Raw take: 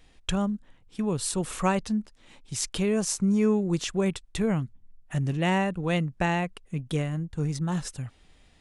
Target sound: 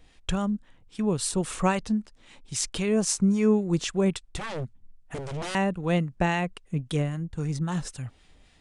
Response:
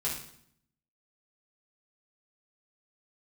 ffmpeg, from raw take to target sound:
-filter_complex "[0:a]asettb=1/sr,asplit=3[a][b][c];[a]atrim=end=4.364[d];[b]atrim=start=4.36:end=5.55,asetpts=PTS-STARTPTS,afade=t=in:d=0.004:c=qsin,afade=t=out:st=1.186:d=0.004:c=qsin,aeval=exprs='0.0355*(abs(mod(val(0)/0.0355+3,4)-2)-1)':c=same[e];[c]atrim=start=5.546[f];[d][e]acrossfade=d=0.004:c1=hsin:c2=qsin[g];[g][f]acrossfade=d=0.004:c1=qsin:c2=hsin,aresample=22050,aresample=44100,acrossover=split=930[h][i];[h]aeval=exprs='val(0)*(1-0.5/2+0.5/2*cos(2*PI*3.7*n/s))':c=same[j];[i]aeval=exprs='val(0)*(1-0.5/2-0.5/2*cos(2*PI*3.7*n/s))':c=same[k];[j][k]amix=inputs=2:normalize=0,volume=3dB"

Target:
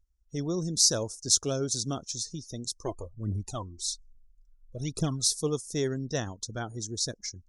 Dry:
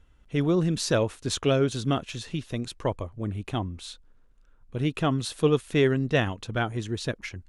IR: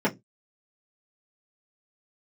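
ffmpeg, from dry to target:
-filter_complex "[0:a]asplit=3[a][b][c];[a]afade=t=out:st=2.85:d=0.02[d];[b]aphaser=in_gain=1:out_gain=1:delay=3:decay=0.68:speed=1.2:type=triangular,afade=t=in:st=2.85:d=0.02,afade=t=out:st=5.33:d=0.02[e];[c]afade=t=in:st=5.33:d=0.02[f];[d][e][f]amix=inputs=3:normalize=0,highshelf=f=3.9k:t=q:w=3:g=13,afftdn=nr=23:nf=-39,volume=-7.5dB"

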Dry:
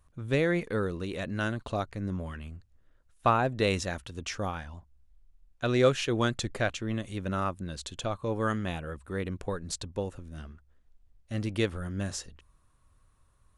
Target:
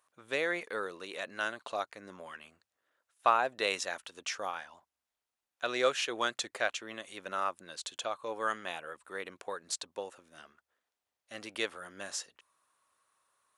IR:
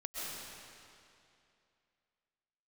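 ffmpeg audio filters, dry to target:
-af "highpass=640"

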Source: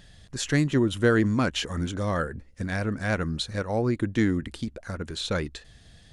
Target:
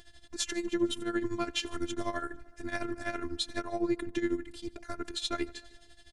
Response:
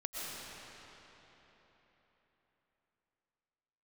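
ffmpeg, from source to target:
-filter_complex "[0:a]alimiter=limit=-20dB:level=0:latency=1:release=33,asplit=2[a][b];[b]adelay=93.29,volume=-24dB,highshelf=f=4k:g=-2.1[c];[a][c]amix=inputs=2:normalize=0,tremolo=f=12:d=0.81,asplit=2[d][e];[e]asplit=3[f][g][h];[f]adelay=151,afreqshift=30,volume=-23dB[i];[g]adelay=302,afreqshift=60,volume=-29.6dB[j];[h]adelay=453,afreqshift=90,volume=-36.1dB[k];[i][j][k]amix=inputs=3:normalize=0[l];[d][l]amix=inputs=2:normalize=0,afftfilt=real='hypot(re,im)*cos(PI*b)':imag='0':win_size=512:overlap=0.75,volume=4dB"

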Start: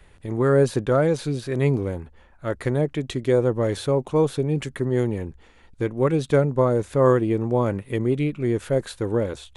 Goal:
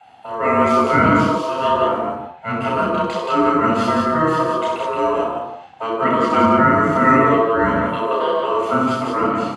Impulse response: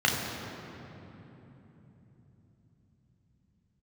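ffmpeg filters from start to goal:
-filter_complex "[0:a]aecho=1:1:64.14|174.9:0.501|0.631,aeval=exprs='val(0)*sin(2*PI*790*n/s)':c=same[a];[1:a]atrim=start_sample=2205,afade=t=out:st=0.25:d=0.01,atrim=end_sample=11466[b];[a][b]afir=irnorm=-1:irlink=0,volume=-7dB"

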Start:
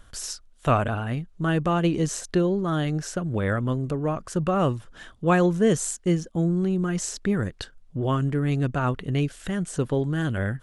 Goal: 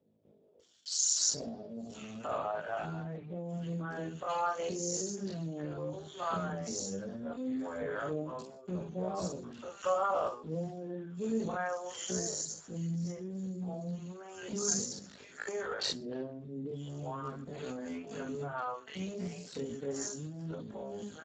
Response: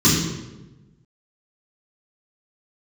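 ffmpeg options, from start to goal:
-filter_complex "[0:a]acrossover=split=500|2400[a][b][c];[c]adelay=310[d];[b]adelay=460[e];[a][e][d]amix=inputs=3:normalize=0,dynaudnorm=f=270:g=13:m=6dB,alimiter=limit=-10.5dB:level=0:latency=1:release=416,tiltshelf=f=1.1k:g=7.5,asplit=2[f][g];[1:a]atrim=start_sample=2205,atrim=end_sample=3528[h];[g][h]afir=irnorm=-1:irlink=0,volume=-33.5dB[i];[f][i]amix=inputs=2:normalize=0,acompressor=threshold=-29dB:ratio=2.5,crystalizer=i=6:c=0,flanger=delay=19:depth=3.1:speed=0.77,highpass=f=240:w=0.5412,highpass=f=240:w=1.3066,equalizer=f=310:t=o:w=0.45:g=-14.5,atempo=0.5" -ar 16000 -c:a libspeex -b:a 8k

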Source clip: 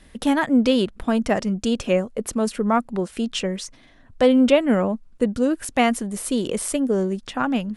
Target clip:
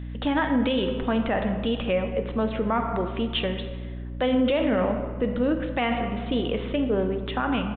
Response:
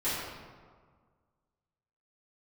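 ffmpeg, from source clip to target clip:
-filter_complex "[0:a]asplit=2[a][b];[1:a]atrim=start_sample=2205[c];[b][c]afir=irnorm=-1:irlink=0,volume=-14dB[d];[a][d]amix=inputs=2:normalize=0,aresample=8000,aresample=44100,lowshelf=f=320:g=-8,aeval=exprs='val(0)+0.0224*(sin(2*PI*60*n/s)+sin(2*PI*2*60*n/s)/2+sin(2*PI*3*60*n/s)/3+sin(2*PI*4*60*n/s)/4+sin(2*PI*5*60*n/s)/5)':c=same,alimiter=limit=-15dB:level=0:latency=1:release=27"

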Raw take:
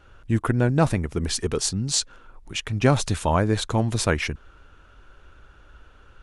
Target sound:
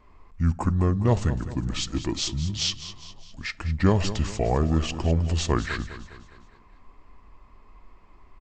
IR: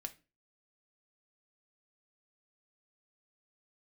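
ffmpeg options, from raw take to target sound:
-filter_complex "[0:a]aecho=1:1:151|302|453|604|755:0.224|0.107|0.0516|0.0248|0.0119,asplit=2[a][b];[1:a]atrim=start_sample=2205,lowshelf=f=490:g=8[c];[b][c]afir=irnorm=-1:irlink=0,volume=-5.5dB[d];[a][d]amix=inputs=2:normalize=0,asetrate=32667,aresample=44100,volume=-6.5dB"

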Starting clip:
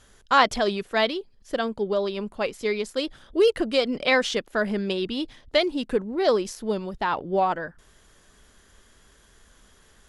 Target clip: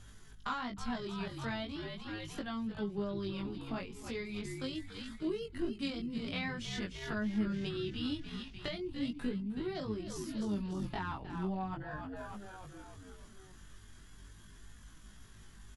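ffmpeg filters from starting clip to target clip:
-filter_complex "[0:a]asplit=7[a][b][c][d][e][f][g];[b]adelay=191,afreqshift=-61,volume=-12dB[h];[c]adelay=382,afreqshift=-122,volume=-16.7dB[i];[d]adelay=573,afreqshift=-183,volume=-21.5dB[j];[e]adelay=764,afreqshift=-244,volume=-26.2dB[k];[f]adelay=955,afreqshift=-305,volume=-30.9dB[l];[g]adelay=1146,afreqshift=-366,volume=-35.7dB[m];[a][h][i][j][k][l][m]amix=inputs=7:normalize=0,acrossover=split=230[n][o];[o]acompressor=threshold=-33dB:ratio=10[p];[n][p]amix=inputs=2:normalize=0,atempo=0.64,equalizer=f=520:t=o:w=0.71:g=-10,acrossover=split=320|5600[q][r][s];[q]acompressor=mode=upward:threshold=-44dB:ratio=2.5[t];[t][r][s]amix=inputs=3:normalize=0,aeval=exprs='val(0)+0.001*(sin(2*PI*50*n/s)+sin(2*PI*2*50*n/s)/2+sin(2*PI*3*50*n/s)/3+sin(2*PI*4*50*n/s)/4+sin(2*PI*5*50*n/s)/5)':c=same,flanger=delay=18.5:depth=3.5:speed=0.4"

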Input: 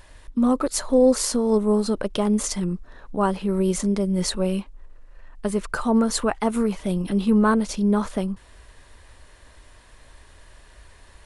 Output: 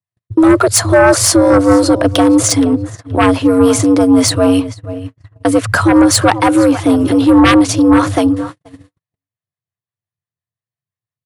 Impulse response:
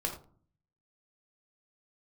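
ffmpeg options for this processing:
-filter_complex "[0:a]acrossover=split=490[a][b];[a]aeval=exprs='val(0)*(1-0.5/2+0.5/2*cos(2*PI*5.8*n/s))':c=same[c];[b]aeval=exprs='val(0)*(1-0.5/2-0.5/2*cos(2*PI*5.8*n/s))':c=same[d];[c][d]amix=inputs=2:normalize=0,afreqshift=85,asplit=2[e][f];[f]adelay=473,lowpass=f=4.8k:p=1,volume=-16dB,asplit=2[g][h];[h]adelay=473,lowpass=f=4.8k:p=1,volume=0.25[i];[g][i]amix=inputs=2:normalize=0[j];[e][j]amix=inputs=2:normalize=0,agate=range=-60dB:threshold=-39dB:ratio=16:detection=peak,aeval=exprs='0.422*sin(PI/2*2.82*val(0)/0.422)':c=same,volume=4dB"

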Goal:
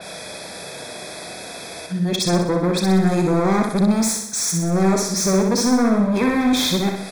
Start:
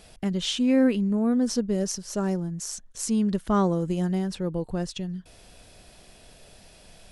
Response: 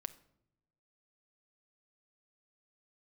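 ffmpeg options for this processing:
-filter_complex "[0:a]areverse,asplit=2[a][b];[b]acompressor=threshold=-37dB:ratio=6,volume=1dB[c];[a][c]amix=inputs=2:normalize=0,highpass=120,lowshelf=f=200:g=-11,asplit=2[d][e];[e]adelay=35,volume=-13dB[f];[d][f]amix=inputs=2:normalize=0,asplit=2[g][h];[1:a]atrim=start_sample=2205[i];[h][i]afir=irnorm=-1:irlink=0,volume=10dB[j];[g][j]amix=inputs=2:normalize=0,acrossover=split=390|3000[k][l][m];[l]acompressor=threshold=-23dB:ratio=3[n];[k][n][m]amix=inputs=3:normalize=0,asoftclip=type=hard:threshold=-20dB,asuperstop=centerf=2900:order=8:qfactor=4.5,aecho=1:1:63|126|189|252|315|378|441:0.596|0.316|0.167|0.0887|0.047|0.0249|0.0132,adynamicequalizer=threshold=0.00708:dfrequency=3900:dqfactor=0.7:tfrequency=3900:tqfactor=0.7:attack=5:release=100:ratio=0.375:range=2:mode=cutabove:tftype=highshelf,volume=3.5dB"

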